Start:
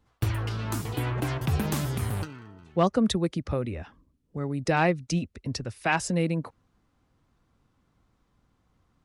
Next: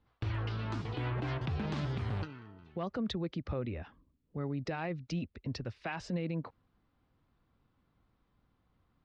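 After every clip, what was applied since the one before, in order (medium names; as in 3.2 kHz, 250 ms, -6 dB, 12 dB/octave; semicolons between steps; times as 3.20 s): low-pass 4.5 kHz 24 dB/octave; peak limiter -22.5 dBFS, peak gain reduction 11 dB; trim -5 dB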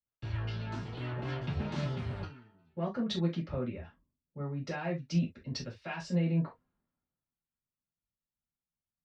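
reverberation, pre-delay 3 ms, DRR -5 dB; three bands expanded up and down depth 70%; trim -6 dB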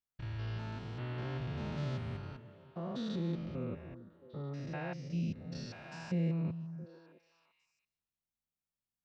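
spectrogram pixelated in time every 200 ms; repeats whose band climbs or falls 335 ms, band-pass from 170 Hz, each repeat 1.4 oct, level -10 dB; trim -2 dB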